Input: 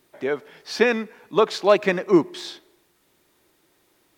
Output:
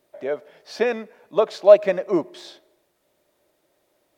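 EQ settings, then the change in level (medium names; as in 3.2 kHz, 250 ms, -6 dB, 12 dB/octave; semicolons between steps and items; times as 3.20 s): peaking EQ 600 Hz +15 dB 0.49 oct; -7.0 dB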